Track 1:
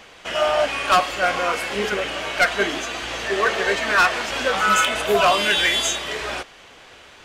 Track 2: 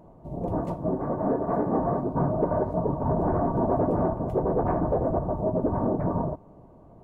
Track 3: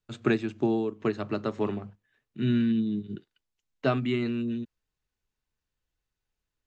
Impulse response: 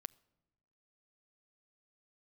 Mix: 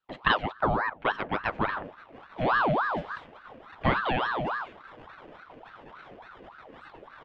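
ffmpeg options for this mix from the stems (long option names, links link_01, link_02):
-filter_complex "[0:a]aderivative,adelay=2050,volume=-9dB,asplit=2[link_01][link_02];[link_02]volume=-22dB[link_03];[1:a]acrusher=samples=25:mix=1:aa=0.000001,adelay=1300,volume=-19.5dB[link_04];[2:a]volume=2.5dB,asplit=2[link_05][link_06];[link_06]apad=whole_len=409988[link_07];[link_01][link_07]sidechaingate=range=-33dB:threshold=-42dB:ratio=16:detection=peak[link_08];[link_08][link_04]amix=inputs=2:normalize=0,equalizer=frequency=61:width_type=o:width=3:gain=15,acompressor=threshold=-43dB:ratio=6,volume=0dB[link_09];[3:a]atrim=start_sample=2205[link_10];[link_03][link_10]afir=irnorm=-1:irlink=0[link_11];[link_05][link_09][link_11]amix=inputs=3:normalize=0,lowpass=frequency=2200:width_type=q:width=2,aeval=exprs='val(0)*sin(2*PI*910*n/s+910*0.6/3.5*sin(2*PI*3.5*n/s))':channel_layout=same"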